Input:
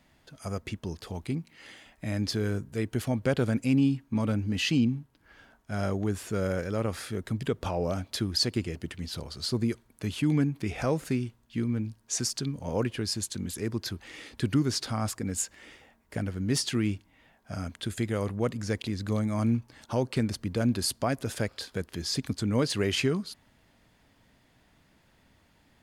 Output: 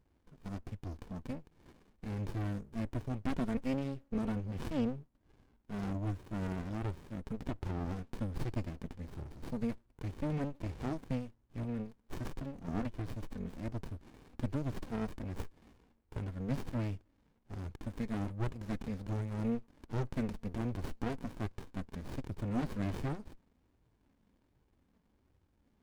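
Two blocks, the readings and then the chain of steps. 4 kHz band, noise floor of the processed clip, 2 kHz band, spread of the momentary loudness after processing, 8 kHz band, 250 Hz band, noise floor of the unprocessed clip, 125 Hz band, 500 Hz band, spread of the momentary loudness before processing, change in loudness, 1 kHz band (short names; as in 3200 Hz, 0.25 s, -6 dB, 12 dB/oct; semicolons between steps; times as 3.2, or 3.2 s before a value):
-22.5 dB, -74 dBFS, -12.5 dB, 10 LU, -25.0 dB, -8.5 dB, -65 dBFS, -7.5 dB, -11.5 dB, 11 LU, -9.5 dB, -7.5 dB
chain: flange 1.3 Hz, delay 1.9 ms, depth 2.8 ms, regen -12%; running maximum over 65 samples; gain -3 dB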